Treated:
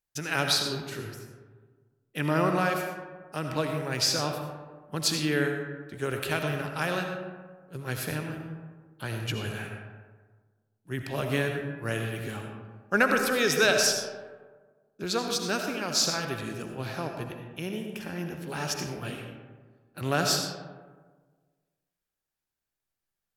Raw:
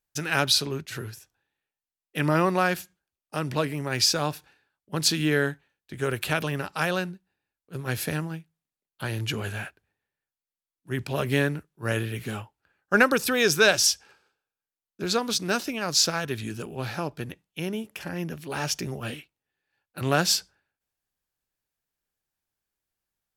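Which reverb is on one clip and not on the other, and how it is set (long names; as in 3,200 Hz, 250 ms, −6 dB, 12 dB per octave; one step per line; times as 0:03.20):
comb and all-pass reverb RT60 1.5 s, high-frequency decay 0.4×, pre-delay 40 ms, DRR 3.5 dB
level −4 dB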